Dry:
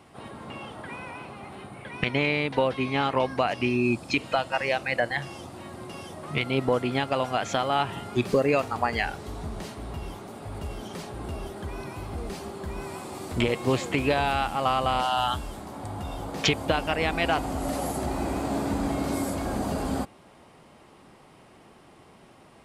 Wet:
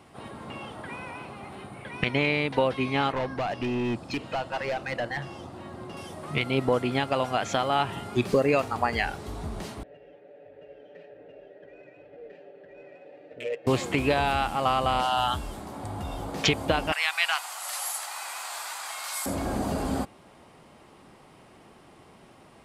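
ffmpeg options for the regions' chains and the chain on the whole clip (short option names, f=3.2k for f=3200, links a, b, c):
-filter_complex "[0:a]asettb=1/sr,asplit=3[a][b][c];[a]atrim=end=3.124[d];[b]atrim=start=3.12:end=5.97,asetpts=PTS-STARTPTS,afade=t=in:d=0.004:c=qsin,afade=t=out:st=2.846:d=0.004:c=qsin,equalizer=f=2.3k:w=6.4:g=-4,volume=25dB,asoftclip=hard,volume=-25dB,lowpass=f=3.1k:p=1[e];[c]atrim=start=5.966[f];[d][e]acrossfade=d=0.004:c1=hsin:c2=qsin[g];[g][f]acrossfade=d=0.004:c1=qsin:c2=hsin,asettb=1/sr,asplit=3[h][i][j];[h]atrim=end=9.834[k];[i]atrim=start=9.83:end=13.67,asetpts=PTS-STARTPTS,afade=t=in:d=0.004:c=qsin,afade=t=out:st=3.836:d=0.004:c=qsin,asplit=3[l][m][n];[l]bandpass=f=530:t=q:w=8,volume=0dB[o];[m]bandpass=f=1.84k:t=q:w=8,volume=-6dB[p];[n]bandpass=f=2.48k:t=q:w=8,volume=-9dB[q];[o][p][q]amix=inputs=3:normalize=0,aecho=1:1:6.8:0.97,atrim=end_sample=169344,adynamicsmooth=sensitivity=7.5:basefreq=2.3k[r];[j]atrim=start=13.666[s];[k][r]acrossfade=d=0.004:c1=hsin:c2=qsin[t];[t][s]acrossfade=d=0.004:c1=qsin:c2=hsin,asettb=1/sr,asplit=3[u][v][w];[u]atrim=end=16.924[x];[v]atrim=start=16.92:end=19.26,asetpts=PTS-STARTPTS,afade=t=in:d=0.004:c=qsin,afade=t=out:st=2.336:d=0.004:c=qsin,highpass=f=990:w=0.5412,highpass=f=990:w=1.3066,highshelf=f=2.4k:g=8[y];[w]atrim=start=19.256[z];[x][y]acrossfade=d=0.004:c1=hsin:c2=qsin[aa];[aa][z]acrossfade=d=0.004:c1=qsin:c2=hsin"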